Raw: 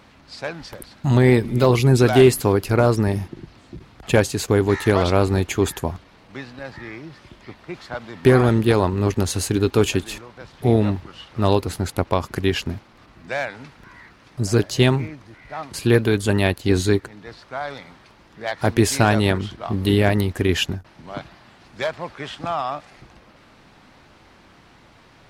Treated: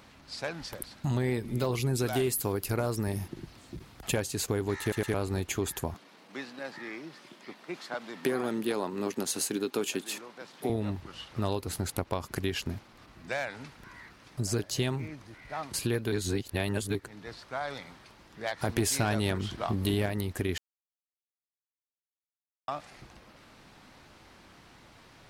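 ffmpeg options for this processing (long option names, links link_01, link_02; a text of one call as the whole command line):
ffmpeg -i in.wav -filter_complex "[0:a]asettb=1/sr,asplit=3[link_01][link_02][link_03];[link_01]atrim=end=1.934[link_04];[link_02]atrim=start=1.93:end=4.14,asetpts=PTS-STARTPTS,afade=type=in:duration=0.004:curve=qsin,afade=type=out:start_time=2.206:duration=0.004:curve=qsin,highshelf=frequency=10000:gain=9.5[link_05];[link_03]atrim=start=4.136[link_06];[link_04][link_05]acrossfade=duration=0.004:curve1=hsin:curve2=qsin[link_07];[link_07][link_06]acrossfade=duration=0.004:curve1=qsin:curve2=hsin,asettb=1/sr,asplit=3[link_08][link_09][link_10];[link_08]atrim=end=5.944[link_11];[link_09]atrim=start=5.94:end=10.7,asetpts=PTS-STARTPTS,afade=type=in:duration=0.004:curve=qsin,afade=type=out:start_time=4.756:duration=0.004:curve=qsin,highpass=frequency=190:width=0.5412,highpass=frequency=190:width=1.3066[link_12];[link_10]atrim=start=10.696[link_13];[link_11][link_12]acrossfade=duration=0.004:curve1=hsin:curve2=qsin[link_14];[link_14][link_13]acrossfade=duration=0.004:curve1=qsin:curve2=hsin,asettb=1/sr,asplit=3[link_15][link_16][link_17];[link_15]atrim=end=18.694[link_18];[link_16]atrim=start=18.69:end=20.06,asetpts=PTS-STARTPTS,afade=type=in:duration=0.004:curve=qsin,afade=type=out:start_time=1.366:duration=0.004:curve=qsin,acontrast=55[link_19];[link_17]atrim=start=20.056[link_20];[link_18][link_19]acrossfade=duration=0.004:curve1=hsin:curve2=qsin[link_21];[link_21][link_20]acrossfade=duration=0.004:curve1=qsin:curve2=hsin,asplit=8[link_22][link_23][link_24][link_25][link_26][link_27][link_28][link_29];[link_22]atrim=end=4.922[link_30];[link_23]atrim=start=4.808:end=4.922[link_31];[link_24]atrim=start=4.808:end=4.922[link_32];[link_25]atrim=start=5.138:end=16.122[link_33];[link_26]atrim=start=16.118:end=16.952,asetpts=PTS-STARTPTS,areverse[link_34];[link_27]atrim=start=16.948:end=20.58,asetpts=PTS-STARTPTS,afade=type=out:start_time=3.628:duration=0.004:curve=hsin[link_35];[link_28]atrim=start=20.58:end=22.68,asetpts=PTS-STARTPTS,volume=0[link_36];[link_29]atrim=start=22.68,asetpts=PTS-STARTPTS,afade=type=in:duration=0.004:curve=hsin[link_37];[link_30][link_31]acrossfade=duration=0.004:curve1=hsin:curve2=hsin[link_38];[link_38][link_32]acrossfade=duration=0.004:curve1=hsin:curve2=hsin[link_39];[link_39][link_33]acrossfade=duration=0.004:curve1=hsin:curve2=hsin[link_40];[link_40][link_34]acrossfade=duration=0.004:curve1=hsin:curve2=hsin[link_41];[link_35][link_36][link_37]concat=n=3:v=0:a=1[link_42];[link_41][link_42]acrossfade=duration=0.004:curve1=hsin:curve2=hsin,highshelf=frequency=6100:gain=8.5,acompressor=threshold=-24dB:ratio=3,volume=-5dB" out.wav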